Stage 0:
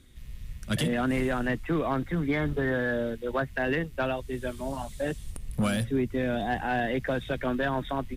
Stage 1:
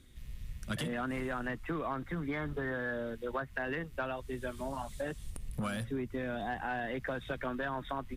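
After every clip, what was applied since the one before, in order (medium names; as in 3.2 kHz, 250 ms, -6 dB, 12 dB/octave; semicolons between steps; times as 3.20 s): dynamic bell 1.2 kHz, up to +7 dB, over -45 dBFS, Q 1.3; compression 3:1, threshold -32 dBFS, peak gain reduction 9.5 dB; trim -3 dB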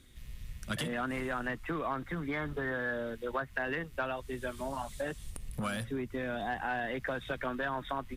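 bass shelf 490 Hz -4 dB; trim +3 dB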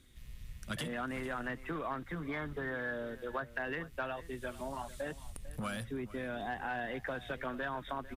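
delay 448 ms -17 dB; trim -3.5 dB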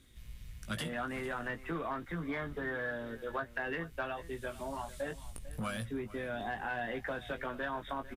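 doubling 18 ms -7 dB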